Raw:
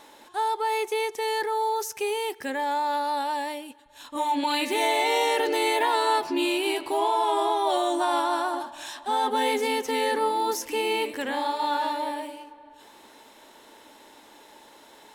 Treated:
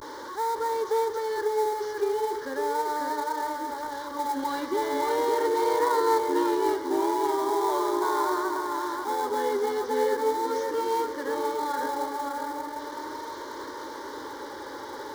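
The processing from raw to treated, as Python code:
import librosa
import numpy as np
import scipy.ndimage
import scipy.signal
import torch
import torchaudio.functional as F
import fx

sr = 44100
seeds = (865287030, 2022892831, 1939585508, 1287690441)

p1 = fx.delta_mod(x, sr, bps=32000, step_db=-28.5)
p2 = fx.high_shelf(p1, sr, hz=3000.0, db=-9.5)
p3 = p2 + fx.echo_wet_lowpass(p2, sr, ms=553, feedback_pct=33, hz=2800.0, wet_db=-3.0, dry=0)
p4 = fx.vibrato(p3, sr, rate_hz=0.39, depth_cents=58.0)
p5 = fx.notch(p4, sr, hz=1300.0, q=9.7)
p6 = fx.sample_hold(p5, sr, seeds[0], rate_hz=3100.0, jitter_pct=20)
p7 = p5 + F.gain(torch.from_numpy(p6), -9.5).numpy()
p8 = fx.highpass(p7, sr, hz=250.0, slope=6)
y = fx.fixed_phaser(p8, sr, hz=700.0, stages=6)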